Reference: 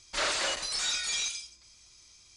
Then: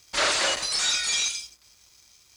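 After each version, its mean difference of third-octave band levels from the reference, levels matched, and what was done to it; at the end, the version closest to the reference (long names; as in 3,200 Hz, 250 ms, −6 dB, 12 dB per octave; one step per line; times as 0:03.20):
3.0 dB: high-pass filter 48 Hz
dead-zone distortion −60 dBFS
level +6.5 dB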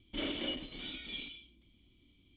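12.5 dB: formant resonators in series i
parametric band 2,400 Hz −12 dB 0.43 octaves
level +15 dB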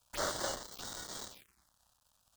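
9.0 dB: gap after every zero crossing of 0.11 ms
phaser swept by the level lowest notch 340 Hz, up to 2,500 Hz, full sweep at −39 dBFS
level +1 dB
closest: first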